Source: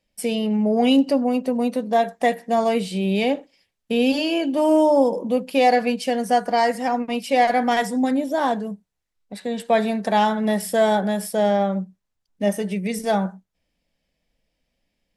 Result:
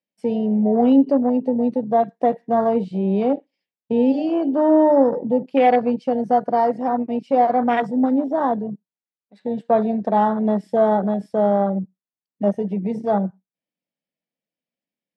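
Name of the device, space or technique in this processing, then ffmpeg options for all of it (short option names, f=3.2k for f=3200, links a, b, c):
over-cleaned archive recording: -af "highpass=160,lowpass=5.1k,afwtdn=0.0708,highpass=140,lowshelf=f=360:g=5.5,equalizer=f=11k:t=o:w=1.1:g=-3"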